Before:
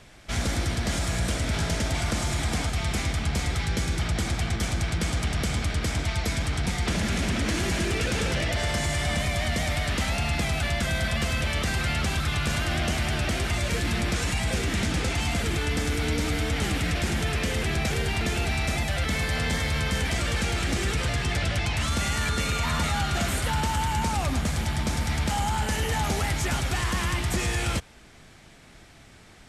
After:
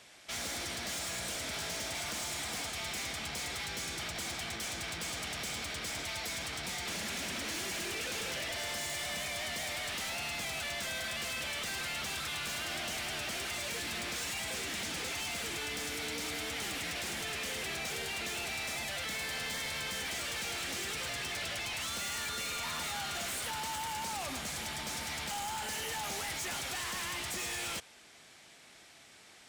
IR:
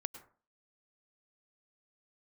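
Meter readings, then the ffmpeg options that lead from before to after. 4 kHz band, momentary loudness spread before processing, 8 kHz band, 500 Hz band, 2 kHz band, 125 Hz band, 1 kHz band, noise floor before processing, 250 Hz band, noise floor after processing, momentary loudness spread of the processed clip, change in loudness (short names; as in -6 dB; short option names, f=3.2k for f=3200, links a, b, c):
-5.0 dB, 2 LU, -4.0 dB, -11.5 dB, -7.5 dB, -23.0 dB, -9.5 dB, -50 dBFS, -16.5 dB, -57 dBFS, 2 LU, -9.0 dB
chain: -af "highpass=f=970:p=1,equalizer=f=1.4k:w=0.92:g=-4,volume=35.5dB,asoftclip=hard,volume=-35.5dB"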